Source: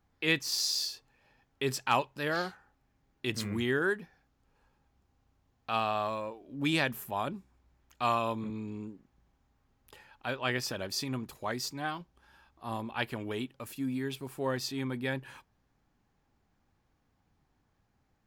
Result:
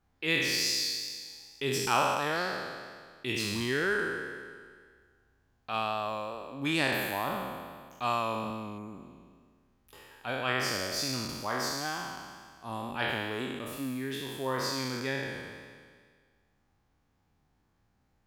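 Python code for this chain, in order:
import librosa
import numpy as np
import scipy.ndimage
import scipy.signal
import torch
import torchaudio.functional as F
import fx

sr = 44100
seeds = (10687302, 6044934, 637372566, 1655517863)

y = fx.spec_trails(x, sr, decay_s=1.8)
y = fx.wow_flutter(y, sr, seeds[0], rate_hz=2.1, depth_cents=26.0)
y = fx.spec_repair(y, sr, seeds[1], start_s=8.81, length_s=0.26, low_hz=2500.0, high_hz=6600.0, source='after')
y = F.gain(torch.from_numpy(y), -2.5).numpy()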